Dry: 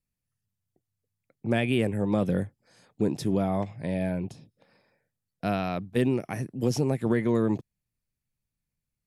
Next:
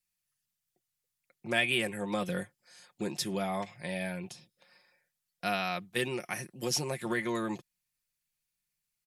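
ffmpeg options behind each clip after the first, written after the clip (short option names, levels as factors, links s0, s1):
-af "tiltshelf=f=800:g=-9.5,aecho=1:1:5.6:0.56,volume=0.631"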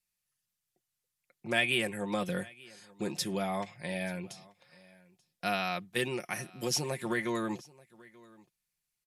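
-af "aecho=1:1:884:0.0668,aresample=32000,aresample=44100"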